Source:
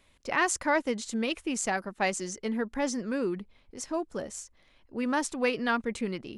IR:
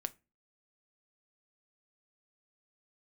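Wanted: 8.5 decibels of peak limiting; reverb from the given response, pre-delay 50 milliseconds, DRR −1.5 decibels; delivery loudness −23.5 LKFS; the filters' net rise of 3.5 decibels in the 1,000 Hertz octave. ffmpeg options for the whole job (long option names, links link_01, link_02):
-filter_complex "[0:a]equalizer=frequency=1000:width_type=o:gain=4.5,alimiter=limit=-20.5dB:level=0:latency=1,asplit=2[link_01][link_02];[1:a]atrim=start_sample=2205,adelay=50[link_03];[link_02][link_03]afir=irnorm=-1:irlink=0,volume=2.5dB[link_04];[link_01][link_04]amix=inputs=2:normalize=0,volume=5dB"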